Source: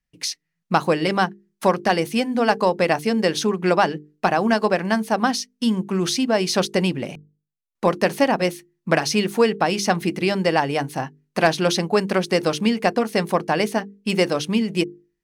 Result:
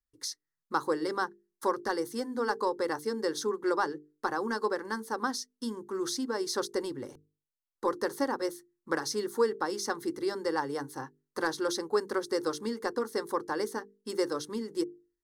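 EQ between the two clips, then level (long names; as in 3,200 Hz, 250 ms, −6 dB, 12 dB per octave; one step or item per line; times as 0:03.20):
phaser with its sweep stopped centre 670 Hz, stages 6
notch filter 3,000 Hz, Q 9.4
−7.5 dB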